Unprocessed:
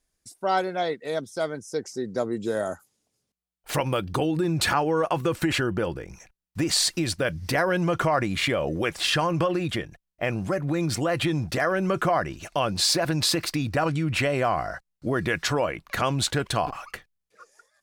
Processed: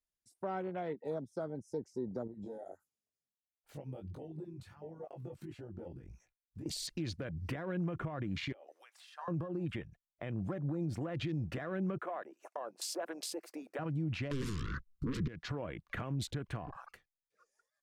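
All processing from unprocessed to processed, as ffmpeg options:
-filter_complex "[0:a]asettb=1/sr,asplit=3[a][b][c];[a]atrim=end=2.274[d];[b]atrim=start=2.27:end=6.66,asetpts=PTS-STARTPTS,afade=t=in:d=0.004:c=qsin,afade=t=out:st=4.386:d=0.004:c=qsin,acompressor=threshold=-34dB:ratio=8:attack=3.2:release=140:knee=1:detection=peak,flanger=delay=17.5:depth=5.2:speed=1.5[e];[c]atrim=start=6.656[f];[d][e]acrossfade=d=0.004:c1=hsin:c2=qsin[g];[g][f]acrossfade=d=0.004:c1=qsin:c2=hsin,asettb=1/sr,asplit=3[h][i][j];[h]atrim=end=8.524[k];[i]atrim=start=8.52:end=9.28,asetpts=PTS-STARTPTS,afade=t=in:d=0.004:c=qsin,afade=t=out:st=0.756:d=0.004:c=qsin,highpass=f=740:w=0.5412,highpass=f=740:w=1.3066,acompressor=threshold=-37dB:ratio=4:attack=3.2:release=140:knee=1:detection=peak[l];[j]atrim=start=9.276[m];[k][l]acrossfade=d=0.004:c1=hsin:c2=qsin[n];[n][m]acrossfade=d=0.004:c1=qsin:c2=hsin,asettb=1/sr,asplit=3[o][p][q];[o]atrim=end=11.984[r];[p]atrim=start=11.98:end=13.79,asetpts=PTS-STARTPTS,afade=t=in:d=0.004:c=qsin,afade=t=out:st=1.806:d=0.004:c=qsin,highpass=f=420:w=0.5412,highpass=f=420:w=1.3066,equalizer=f=3.8k:w=1.5:g=-12,acrusher=bits=9:mode=log:mix=0:aa=0.000001[s];[q]atrim=start=13.786[t];[r][s]acrossfade=d=0.004:c1=hsin:c2=qsin[u];[u][t]acrossfade=d=0.004:c1=qsin:c2=hsin,asettb=1/sr,asplit=3[v][w][x];[v]atrim=end=14.314[y];[w]atrim=start=14.31:end=15.28,asetpts=PTS-STARTPTS,afade=t=in:d=0.004:c=qsin,afade=t=out:st=0.966:d=0.004:c=qsin,equalizer=f=1.2k:w=3.6:g=13.5,aeval=exprs='0.422*sin(PI/2*7.94*val(0)/0.422)':c=same,asuperstop=centerf=700:order=8:qfactor=1.4[z];[x]atrim=start=15.276[aa];[y][z]acrossfade=d=0.004:c1=hsin:c2=qsin[ab];[ab][aa]acrossfade=d=0.004:c1=qsin:c2=hsin,afwtdn=0.02,acrossover=split=330[ac][ad];[ad]acompressor=threshold=-35dB:ratio=4[ae];[ac][ae]amix=inputs=2:normalize=0,alimiter=level_in=0.5dB:limit=-24dB:level=0:latency=1:release=285,volume=-0.5dB,volume=-4dB"

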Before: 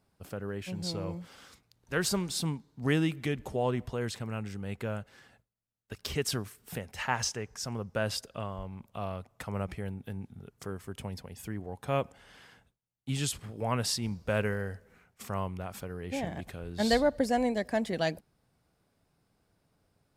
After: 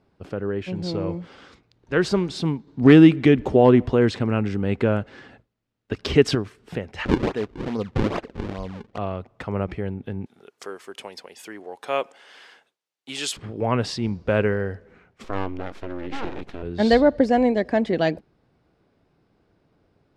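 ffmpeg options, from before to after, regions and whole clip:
-filter_complex "[0:a]asettb=1/sr,asplit=3[a][b][c];[a]atrim=end=2.674[d];[b]atrim=start=2.67:end=6.35,asetpts=PTS-STARTPTS,afade=t=in:d=0.004:c=qsin,afade=t=out:st=3.676:d=0.004:c=qsin,equalizer=f=260:t=o:w=0.31:g=4.5,acontrast=27,asoftclip=type=hard:threshold=-14dB[e];[c]atrim=start=6.346[f];[d][e]acrossfade=d=0.004:c1=hsin:c2=qsin[g];[g][f]acrossfade=d=0.004:c1=qsin:c2=hsin,asettb=1/sr,asplit=3[h][i][j];[h]atrim=end=7.054[k];[i]atrim=start=7.05:end=8.98,asetpts=PTS-STARTPTS,afade=t=in:d=0.004:c=qsin,afade=t=out:st=1.926:d=0.004:c=qsin,bandreject=f=60:t=h:w=6,bandreject=f=120:t=h:w=6,aecho=1:1:4.1:0.36,atrim=end_sample=85113,acrusher=samples=39:mix=1:aa=0.000001:lfo=1:lforange=62.4:lforate=2.4[l];[j]atrim=start=8.976[m];[k][l]acrossfade=d=0.004:c1=hsin:c2=qsin[n];[n][m]acrossfade=d=0.004:c1=qsin:c2=hsin,asettb=1/sr,asplit=3[o][p][q];[o]atrim=end=10.264[r];[p]atrim=start=10.26:end=13.37,asetpts=PTS-STARTPTS,afade=t=in:d=0.004:c=qsin,afade=t=out:st=3.106:d=0.004:c=qsin,highpass=530,aemphasis=mode=production:type=75fm[s];[q]atrim=start=13.366[t];[r][s]acrossfade=d=0.004:c1=hsin:c2=qsin[u];[u][t]acrossfade=d=0.004:c1=qsin:c2=hsin,asettb=1/sr,asplit=3[v][w][x];[v]atrim=end=15.244[y];[w]atrim=start=15.24:end=16.63,asetpts=PTS-STARTPTS,afade=t=in:d=0.004:c=qsin,afade=t=out:st=1.386:d=0.004:c=qsin,highpass=44,equalizer=f=320:w=3.8:g=-6.5,aeval=exprs='abs(val(0))':c=same[z];[x]atrim=start=16.626[aa];[y][z]acrossfade=d=0.004:c1=hsin:c2=qsin[ab];[ab][aa]acrossfade=d=0.004:c1=qsin:c2=hsin,lowpass=3.7k,equalizer=f=350:t=o:w=0.98:g=7,volume=6.5dB"

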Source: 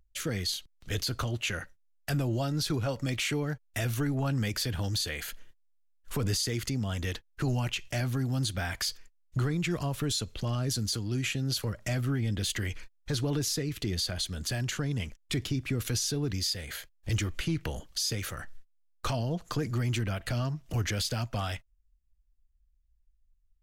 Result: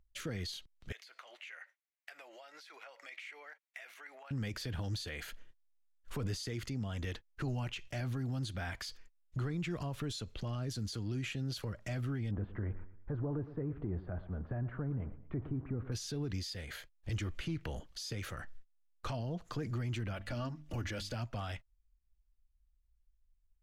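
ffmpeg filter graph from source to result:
-filter_complex "[0:a]asettb=1/sr,asplit=3[a][b][c];[a]atrim=end=0.924[d];[b]atrim=start=0.92:end=4.31,asetpts=PTS-STARTPTS,afade=t=in:d=0.004:c=qsin,afade=t=out:st=3.386:d=0.004:c=qsin,highpass=f=610:w=0.5412,highpass=f=610:w=1.3066,acompressor=threshold=-47dB:ratio=8:attack=3.2:release=140:knee=1:detection=peak,equalizer=f=2.1k:w=2.2:g=12.5[e];[c]atrim=start=4.306[f];[d][e]acrossfade=d=0.004:c1=hsin:c2=qsin[g];[g][f]acrossfade=d=0.004:c1=qsin:c2=hsin,asettb=1/sr,asplit=3[h][i][j];[h]atrim=end=12.314[k];[i]atrim=start=12.31:end=15.92,asetpts=PTS-STARTPTS,afade=t=in:d=0.004:c=qsin,afade=t=out:st=3.606:d=0.004:c=qsin,aeval=exprs='val(0)+0.5*0.00596*sgn(val(0))':c=same,lowpass=f=1.3k:w=0.5412,lowpass=f=1.3k:w=1.3066,aecho=1:1:115|230|345:0.158|0.0618|0.0241,atrim=end_sample=159201[l];[j]atrim=start=15.916[m];[k][l]acrossfade=d=0.004:c1=hsin:c2=qsin[n];[n][m]acrossfade=d=0.004:c1=qsin:c2=hsin,asettb=1/sr,asplit=3[o][p][q];[o]atrim=end=20.134[r];[p]atrim=start=20.13:end=21.15,asetpts=PTS-STARTPTS,afade=t=in:d=0.004:c=qsin,afade=t=out:st=1.016:d=0.004:c=qsin,bandreject=f=50:t=h:w=6,bandreject=f=100:t=h:w=6,bandreject=f=150:t=h:w=6,bandreject=f=200:t=h:w=6,bandreject=f=250:t=h:w=6,bandreject=f=300:t=h:w=6,aecho=1:1:3.5:0.42,atrim=end_sample=44982[s];[q]atrim=start=21.146[t];[r][s]acrossfade=d=0.004:c1=hsin:c2=qsin[u];[u][t]acrossfade=d=0.004:c1=qsin:c2=hsin,alimiter=level_in=1.5dB:limit=-24dB:level=0:latency=1:release=62,volume=-1.5dB,highshelf=f=5.9k:g=-11.5,volume=-4dB"

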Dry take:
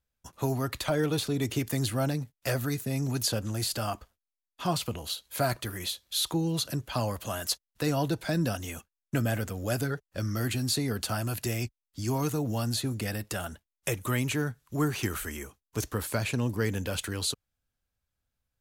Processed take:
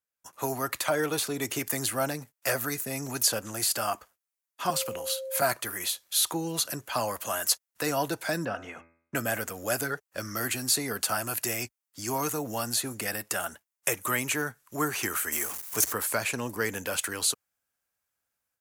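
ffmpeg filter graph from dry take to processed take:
-filter_complex "[0:a]asettb=1/sr,asplit=3[a][b][c];[a]atrim=end=4.704[d];[b]atrim=start=4.7:end=5.42,asetpts=PTS-STARTPTS,afade=t=in:d=0.004:c=qsin,afade=t=out:st=0.716:d=0.004:c=qsin,acrossover=split=250|3000[e][f][g];[f]acompressor=threshold=-34dB:ratio=6:attack=3.2:release=140:knee=2.83:detection=peak[h];[e][h][g]amix=inputs=3:normalize=0,acrusher=bits=8:mode=log:mix=0:aa=0.000001,aeval=exprs='val(0)+0.0178*sin(2*PI*530*n/s)':c=same[i];[c]atrim=start=5.416[j];[d][i]acrossfade=d=0.004:c1=hsin:c2=qsin[k];[k][j]acrossfade=d=0.004:c1=qsin:c2=hsin,asettb=1/sr,asplit=3[l][m][n];[l]atrim=end=8.454[o];[m]atrim=start=8.45:end=9.15,asetpts=PTS-STARTPTS,afade=t=in:d=0.004:c=qsin,afade=t=out:st=0.696:d=0.004:c=qsin,lowpass=2.1k,bandreject=f=83.32:t=h:w=4,bandreject=f=166.64:t=h:w=4,bandreject=f=249.96:t=h:w=4,bandreject=f=333.28:t=h:w=4,bandreject=f=416.6:t=h:w=4,bandreject=f=499.92:t=h:w=4,bandreject=f=583.24:t=h:w=4,bandreject=f=666.56:t=h:w=4,bandreject=f=749.88:t=h:w=4,bandreject=f=833.2:t=h:w=4,bandreject=f=916.52:t=h:w=4,bandreject=f=999.84:t=h:w=4,bandreject=f=1.08316k:t=h:w=4,bandreject=f=1.16648k:t=h:w=4,bandreject=f=1.2498k:t=h:w=4,bandreject=f=1.33312k:t=h:w=4,bandreject=f=1.41644k:t=h:w=4,bandreject=f=1.49976k:t=h:w=4,bandreject=f=1.58308k:t=h:w=4,bandreject=f=1.6664k:t=h:w=4,bandreject=f=1.74972k:t=h:w=4,bandreject=f=1.83304k:t=h:w=4,bandreject=f=1.91636k:t=h:w=4,bandreject=f=1.99968k:t=h:w=4,bandreject=f=2.083k:t=h:w=4,bandreject=f=2.16632k:t=h:w=4,bandreject=f=2.24964k:t=h:w=4,bandreject=f=2.33296k:t=h:w=4,bandreject=f=2.41628k:t=h:w=4,bandreject=f=2.4996k:t=h:w=4,bandreject=f=2.58292k:t=h:w=4[p];[n]atrim=start=9.146[q];[o][p]acrossfade=d=0.004:c1=hsin:c2=qsin[r];[r][q]acrossfade=d=0.004:c1=qsin:c2=hsin,asettb=1/sr,asplit=3[s][t][u];[s]atrim=end=15.324[v];[t]atrim=start=15.32:end=15.93,asetpts=PTS-STARTPTS,afade=t=in:d=0.004:c=qsin,afade=t=out:st=0.606:d=0.004:c=qsin,aeval=exprs='val(0)+0.5*0.0112*sgn(val(0))':c=same,highshelf=f=6.1k:g=7.5[w];[u]atrim=start=15.926[x];[v][w]acrossfade=d=0.004:c1=hsin:c2=qsin[y];[y][x]acrossfade=d=0.004:c1=qsin:c2=hsin,equalizer=f=3.7k:t=o:w=1.1:g=-8.5,dynaudnorm=f=180:g=3:m=10dB,highpass=f=1.1k:p=1,volume=-1.5dB"

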